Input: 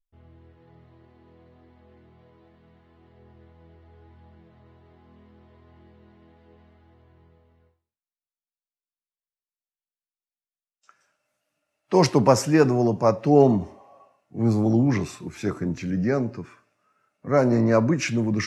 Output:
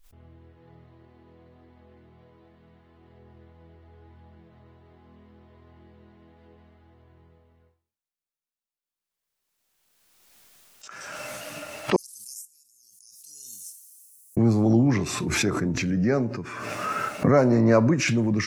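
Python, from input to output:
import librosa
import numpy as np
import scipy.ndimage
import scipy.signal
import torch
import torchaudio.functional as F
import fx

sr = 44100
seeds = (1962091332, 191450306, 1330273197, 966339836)

y = fx.cheby2_highpass(x, sr, hz=1800.0, order=4, stop_db=80, at=(11.96, 14.37))
y = fx.pre_swell(y, sr, db_per_s=25.0)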